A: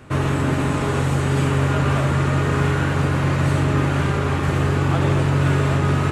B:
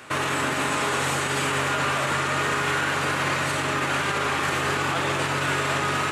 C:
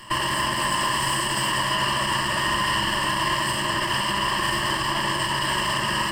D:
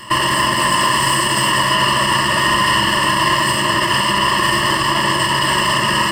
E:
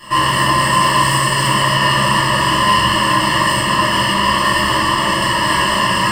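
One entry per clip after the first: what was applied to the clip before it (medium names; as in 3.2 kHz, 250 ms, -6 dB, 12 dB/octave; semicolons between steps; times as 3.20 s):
high-pass 1.4 kHz 6 dB/octave; peak limiter -24.5 dBFS, peak gain reduction 7.5 dB; trim +9 dB
comb filter that takes the minimum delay 0.98 ms; rippled EQ curve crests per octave 1.3, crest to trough 15 dB
comb of notches 790 Hz; trim +9 dB
reverberation RT60 0.65 s, pre-delay 7 ms, DRR -9 dB; trim -9 dB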